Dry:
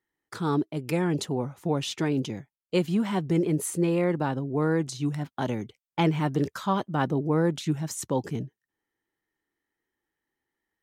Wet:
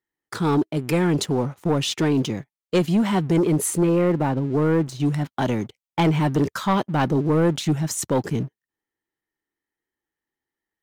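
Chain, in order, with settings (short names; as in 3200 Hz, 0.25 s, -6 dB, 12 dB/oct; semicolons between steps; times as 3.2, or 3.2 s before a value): 3.83–5 bell 7100 Hz -10 dB 2.9 oct; sample leveller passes 2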